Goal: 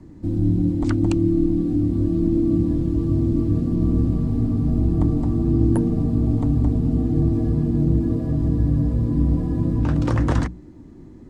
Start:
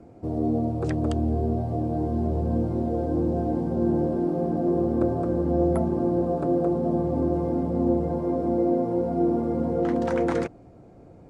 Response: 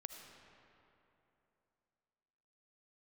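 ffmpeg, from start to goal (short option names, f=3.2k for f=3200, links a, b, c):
-af "afreqshift=-410,bandreject=f=60:t=h:w=6,bandreject=f=120:t=h:w=6,bandreject=f=180:t=h:w=6,volume=6.5dB"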